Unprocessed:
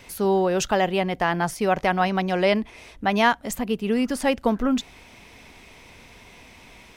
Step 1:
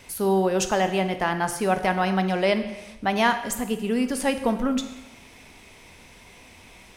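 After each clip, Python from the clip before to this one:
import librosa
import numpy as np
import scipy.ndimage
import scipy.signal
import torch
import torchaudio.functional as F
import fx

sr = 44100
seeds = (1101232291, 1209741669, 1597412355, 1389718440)

y = fx.peak_eq(x, sr, hz=9700.0, db=6.0, octaves=0.91)
y = fx.rev_plate(y, sr, seeds[0], rt60_s=1.0, hf_ratio=0.95, predelay_ms=0, drr_db=8.0)
y = F.gain(torch.from_numpy(y), -2.0).numpy()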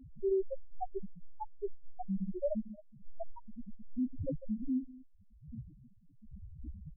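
y = np.where(x < 0.0, 10.0 ** (-12.0 / 20.0) * x, x)
y = fx.dmg_wind(y, sr, seeds[1], corner_hz=220.0, level_db=-38.0)
y = fx.spec_topn(y, sr, count=1)
y = F.gain(torch.from_numpy(y), 1.0).numpy()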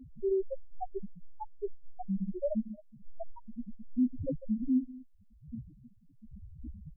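y = fx.small_body(x, sr, hz=(240.0, 460.0), ring_ms=45, db=7)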